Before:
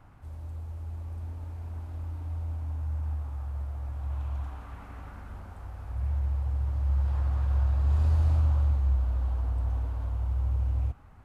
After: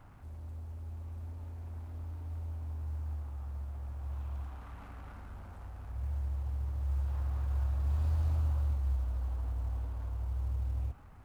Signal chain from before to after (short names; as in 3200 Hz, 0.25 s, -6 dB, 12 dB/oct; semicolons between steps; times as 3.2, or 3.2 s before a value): G.711 law mismatch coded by mu; gain -7.5 dB